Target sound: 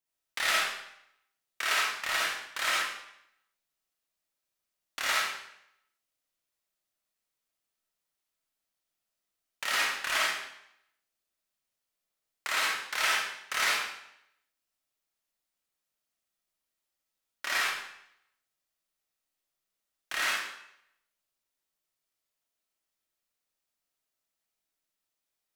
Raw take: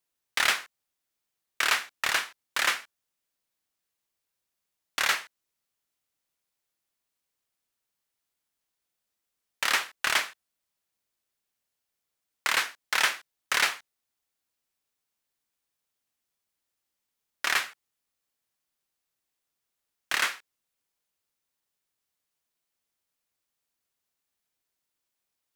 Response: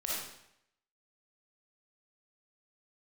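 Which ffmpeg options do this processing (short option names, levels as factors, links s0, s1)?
-filter_complex "[1:a]atrim=start_sample=2205[s0];[0:a][s0]afir=irnorm=-1:irlink=0,volume=0.501"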